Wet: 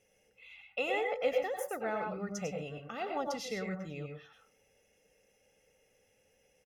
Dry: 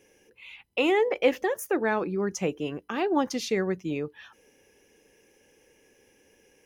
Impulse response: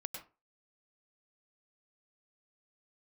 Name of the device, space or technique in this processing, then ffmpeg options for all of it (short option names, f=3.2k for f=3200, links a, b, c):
microphone above a desk: -filter_complex "[0:a]aecho=1:1:1.5:0.72[a];[1:a]atrim=start_sample=2205[b];[a][b]afir=irnorm=-1:irlink=0,volume=-7.5dB"